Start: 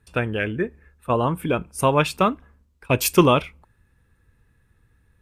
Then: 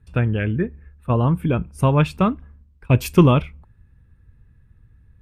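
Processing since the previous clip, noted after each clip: tone controls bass +13 dB, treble -7 dB; trim -3 dB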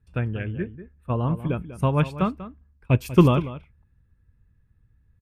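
echo from a far wall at 33 m, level -10 dB; upward expansion 1.5:1, over -24 dBFS; trim -1.5 dB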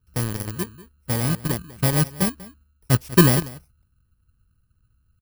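bit-reversed sample order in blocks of 32 samples; in parallel at -3 dB: bit crusher 4-bit; on the sum: trim -3.5 dB

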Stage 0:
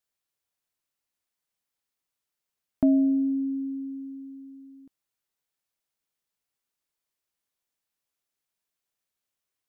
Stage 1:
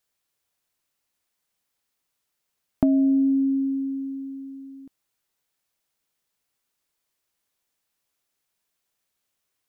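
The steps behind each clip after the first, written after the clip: compression, threshold -24 dBFS, peak gain reduction 7 dB; trim +7 dB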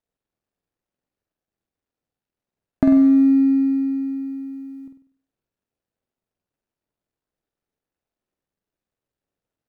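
median filter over 41 samples; on a send: flutter echo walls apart 8.3 m, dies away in 0.5 s; on the sum: trim +3 dB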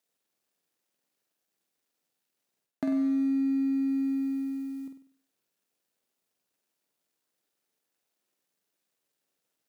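high-pass 200 Hz 12 dB/octave; treble shelf 2.2 kHz +11.5 dB; reverse; compression 6:1, threshold -26 dBFS, peak gain reduction 13.5 dB; reverse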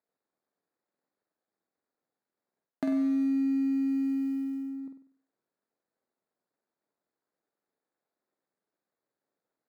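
local Wiener filter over 15 samples; bass shelf 160 Hz -7 dB; trim +1.5 dB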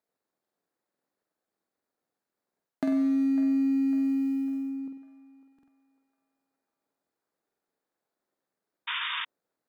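band-passed feedback delay 551 ms, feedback 50%, band-pass 1.2 kHz, level -12 dB; painted sound noise, 8.87–9.25 s, 910–3700 Hz -34 dBFS; buffer glitch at 0.41/5.54/7.47 s, samples 2048, times 2; trim +2 dB

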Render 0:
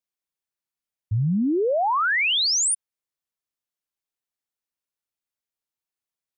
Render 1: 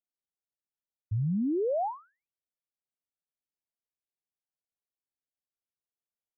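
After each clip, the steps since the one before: steep low-pass 840 Hz 48 dB/octave; trim -6.5 dB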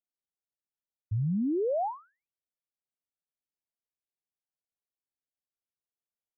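no audible change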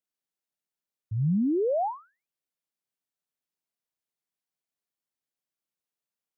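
resonant low shelf 110 Hz -7 dB, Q 1.5; trim +2.5 dB

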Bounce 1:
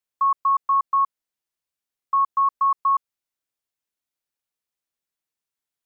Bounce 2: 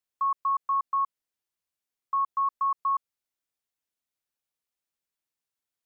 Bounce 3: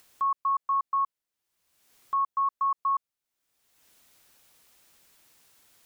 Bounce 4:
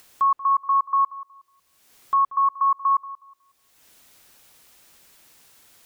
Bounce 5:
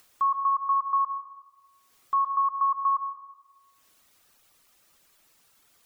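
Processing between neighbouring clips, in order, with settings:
peak limiter -19.5 dBFS, peak gain reduction 4.5 dB; trim -2 dB
upward compressor, threshold -39 dBFS
filtered feedback delay 183 ms, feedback 29%, low-pass 1.3 kHz, level -14.5 dB; trim +7 dB
reverb removal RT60 0.98 s; peaking EQ 1.2 kHz +5 dB 0.22 oct; algorithmic reverb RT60 1.2 s, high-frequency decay 0.55×, pre-delay 55 ms, DRR 8 dB; trim -6.5 dB

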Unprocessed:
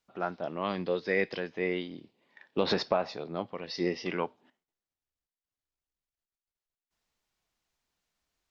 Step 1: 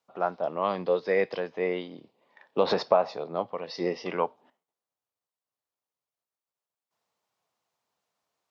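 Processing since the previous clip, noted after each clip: high-pass 100 Hz 24 dB/octave; high-order bell 740 Hz +8 dB; trim -1.5 dB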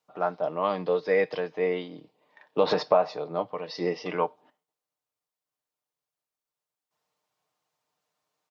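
comb 6.6 ms, depth 46%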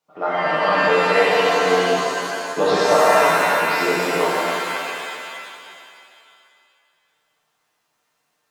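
pitch-shifted reverb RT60 2.3 s, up +7 st, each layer -2 dB, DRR -7.5 dB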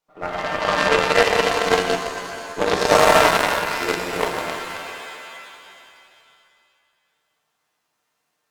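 partial rectifier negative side -7 dB; Chebyshev shaper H 7 -24 dB, 8 -19 dB, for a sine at -3.5 dBFS; trim +4.5 dB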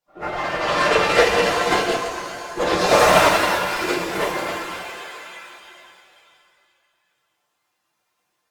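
phase randomisation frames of 50 ms; reverberation RT60 0.40 s, pre-delay 3 ms, DRR 3.5 dB; trim -1 dB

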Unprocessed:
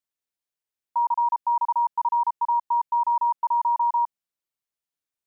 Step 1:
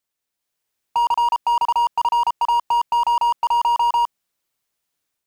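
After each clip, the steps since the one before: level rider gain up to 5.5 dB; slew-rate limiter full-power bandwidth 63 Hz; trim +7.5 dB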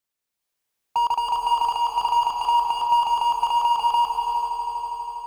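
echo with a slow build-up 81 ms, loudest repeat 5, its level -13 dB; gated-style reverb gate 450 ms rising, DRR 4.5 dB; trim -2.5 dB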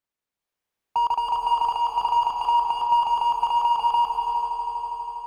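treble shelf 3.5 kHz -10 dB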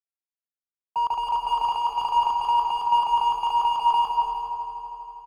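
on a send: delay 167 ms -6 dB; on the sum: three bands expanded up and down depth 70%; trim -1 dB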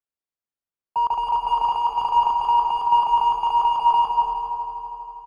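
treble shelf 2.4 kHz -10.5 dB; trim +4.5 dB

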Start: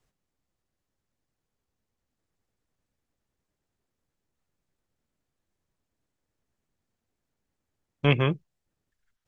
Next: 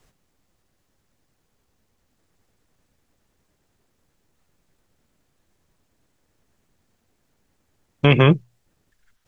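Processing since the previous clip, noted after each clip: hum notches 60/120 Hz; loudness maximiser +15 dB; trim -1 dB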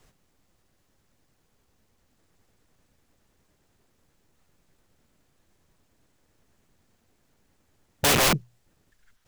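integer overflow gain 16.5 dB; trim +1 dB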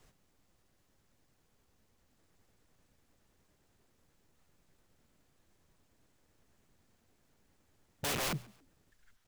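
peak limiter -26 dBFS, peak gain reduction 10.5 dB; frequency-shifting echo 138 ms, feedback 35%, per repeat +61 Hz, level -24 dB; trim -4 dB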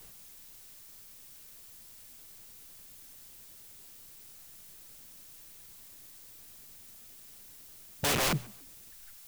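added noise blue -59 dBFS; trim +6.5 dB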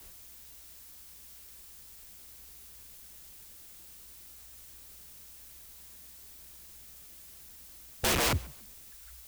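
frequency shift -62 Hz; trim +1 dB

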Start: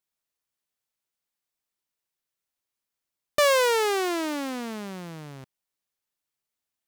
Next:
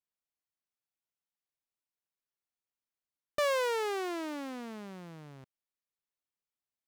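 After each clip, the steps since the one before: treble shelf 3.6 kHz -6 dB; trim -8.5 dB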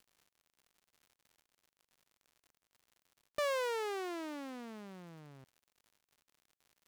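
crackle 110 per s -49 dBFS; trim -5 dB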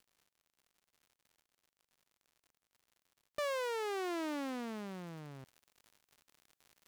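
gain riding within 4 dB 0.5 s; trim +1.5 dB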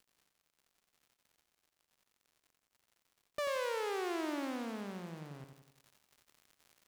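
feedback delay 89 ms, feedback 52%, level -7.5 dB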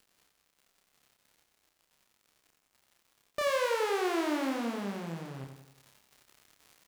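doubling 30 ms -3 dB; trim +5 dB

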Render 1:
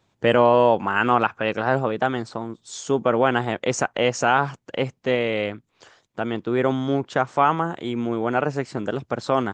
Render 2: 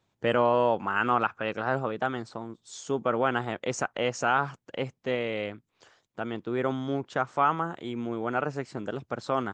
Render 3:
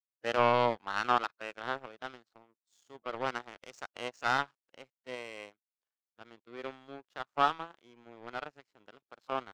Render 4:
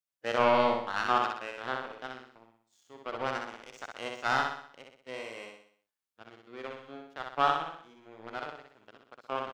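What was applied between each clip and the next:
dynamic bell 1.3 kHz, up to +5 dB, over -36 dBFS, Q 3.9; trim -7.5 dB
frequency weighting A; power-law waveshaper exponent 2; harmonic-percussive split percussive -12 dB; trim +6.5 dB
feedback delay 62 ms, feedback 48%, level -3.5 dB

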